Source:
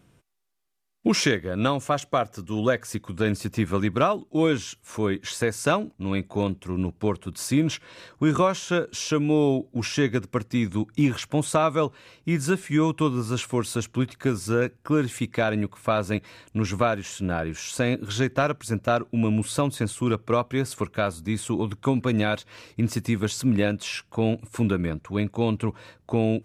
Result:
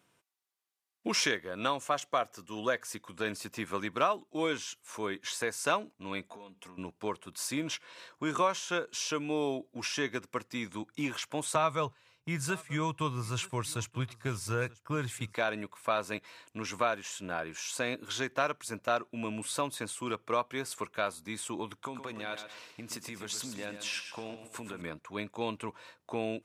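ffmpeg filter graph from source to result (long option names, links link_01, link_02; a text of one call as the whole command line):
ffmpeg -i in.wav -filter_complex "[0:a]asettb=1/sr,asplit=3[link_01][link_02][link_03];[link_01]atrim=end=6.314[link_04];[link_02]atrim=start=6.31:end=6.78,asetpts=PTS-STARTPTS,afade=type=in:duration=0.004:curve=qsin,afade=type=out:start_time=0.466:duration=0.004:curve=qsin,aecho=1:1:4.3:0.66,atrim=end_sample=20727,acompressor=threshold=-35dB:ratio=12:attack=3.2:release=140:knee=1:detection=peak[link_05];[link_03]atrim=start=6.776[link_06];[link_04][link_05]acrossfade=duration=0.004:curve1=hsin:curve2=qsin[link_07];[link_07][link_06]acrossfade=duration=0.004:curve1=qsin:curve2=hsin,asettb=1/sr,asplit=3[link_08][link_09][link_10];[link_08]atrim=end=11.554[link_11];[link_09]atrim=start=11.55:end=15.35,asetpts=PTS-STARTPTS,afade=type=in:duration=0.004:curve=qsin,afade=type=out:start_time=3.796:duration=0.004:curve=qsin,lowshelf=frequency=170:width_type=q:width=1.5:gain=12,agate=range=-9dB:threshold=-35dB:ratio=16:release=100:detection=peak,aecho=1:1:936:0.0794,atrim=end_sample=167580[link_12];[link_10]atrim=start=15.346[link_13];[link_11][link_12]acrossfade=duration=0.004:curve1=hsin:curve2=qsin[link_14];[link_14][link_13]acrossfade=duration=0.004:curve1=qsin:curve2=hsin,asettb=1/sr,asplit=3[link_15][link_16][link_17];[link_15]atrim=end=21.794[link_18];[link_16]atrim=start=21.79:end=24.82,asetpts=PTS-STARTPTS,afade=type=in:duration=0.004:curve=qsin,afade=type=out:start_time=3.026:duration=0.004:curve=qsin,acompressor=threshold=-25dB:ratio=6:attack=3.2:release=140:knee=1:detection=peak,aecho=1:1:120|240|360|480:0.355|0.124|0.0435|0.0152,atrim=end_sample=133623[link_19];[link_17]atrim=start=24.816[link_20];[link_18][link_19]acrossfade=duration=0.004:curve1=hsin:curve2=qsin[link_21];[link_21][link_20]acrossfade=duration=0.004:curve1=qsin:curve2=hsin,highpass=frequency=750:poles=1,equalizer=frequency=970:width_type=o:width=0.28:gain=3.5,volume=-4dB" out.wav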